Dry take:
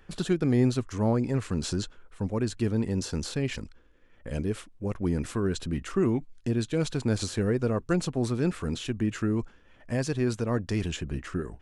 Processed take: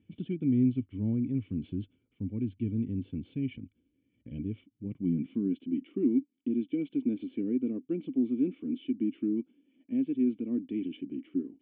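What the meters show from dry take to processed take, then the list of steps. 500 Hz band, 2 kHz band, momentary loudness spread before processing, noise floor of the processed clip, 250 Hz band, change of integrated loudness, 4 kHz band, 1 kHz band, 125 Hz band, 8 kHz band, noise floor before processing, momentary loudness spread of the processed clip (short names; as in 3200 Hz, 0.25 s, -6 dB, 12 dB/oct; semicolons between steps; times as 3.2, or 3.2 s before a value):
-9.5 dB, under -15 dB, 7 LU, -76 dBFS, -0.5 dB, -3.0 dB, under -15 dB, under -25 dB, -8.0 dB, under -40 dB, -57 dBFS, 11 LU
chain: vibrato 0.73 Hz 13 cents; vocal tract filter i; high-pass sweep 98 Hz -> 280 Hz, 4.67–5.68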